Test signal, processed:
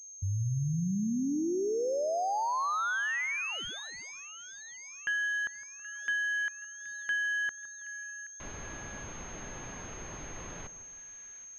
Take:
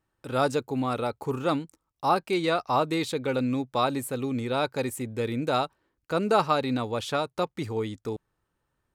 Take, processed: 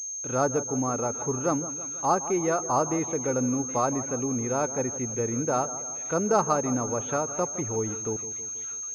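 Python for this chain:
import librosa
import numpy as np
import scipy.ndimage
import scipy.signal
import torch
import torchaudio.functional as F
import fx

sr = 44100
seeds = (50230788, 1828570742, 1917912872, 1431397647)

y = fx.echo_split(x, sr, split_hz=1500.0, low_ms=162, high_ms=775, feedback_pct=52, wet_db=-14)
y = fx.env_lowpass_down(y, sr, base_hz=1600.0, full_db=-25.5)
y = fx.pwm(y, sr, carrier_hz=6400.0)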